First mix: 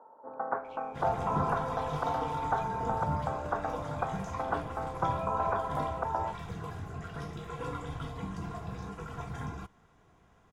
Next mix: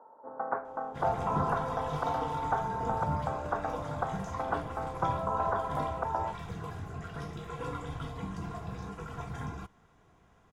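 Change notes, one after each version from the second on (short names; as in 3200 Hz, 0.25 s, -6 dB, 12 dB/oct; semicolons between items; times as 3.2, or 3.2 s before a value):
speech: muted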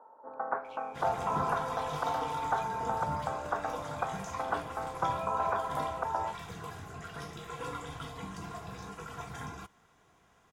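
speech: unmuted; master: add tilt +2 dB/oct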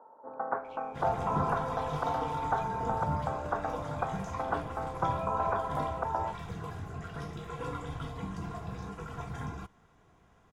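master: add tilt -2 dB/oct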